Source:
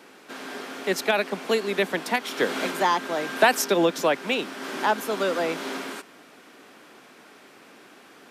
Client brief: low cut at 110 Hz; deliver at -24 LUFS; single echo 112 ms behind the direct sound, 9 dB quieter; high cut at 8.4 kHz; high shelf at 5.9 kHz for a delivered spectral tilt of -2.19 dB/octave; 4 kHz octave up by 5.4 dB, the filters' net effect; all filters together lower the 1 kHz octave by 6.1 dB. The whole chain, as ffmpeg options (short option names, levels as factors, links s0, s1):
-af "highpass=110,lowpass=8400,equalizer=f=1000:t=o:g=-8.5,equalizer=f=4000:t=o:g=6.5,highshelf=f=5900:g=3,aecho=1:1:112:0.355,volume=1.12"